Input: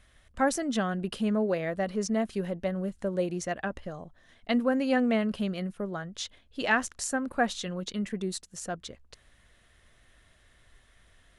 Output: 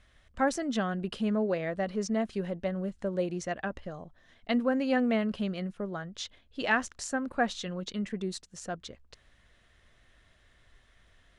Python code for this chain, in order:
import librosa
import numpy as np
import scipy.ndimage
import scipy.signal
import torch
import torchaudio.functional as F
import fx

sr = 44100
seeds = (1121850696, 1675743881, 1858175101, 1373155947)

y = scipy.signal.sosfilt(scipy.signal.butter(2, 6900.0, 'lowpass', fs=sr, output='sos'), x)
y = y * 10.0 ** (-1.5 / 20.0)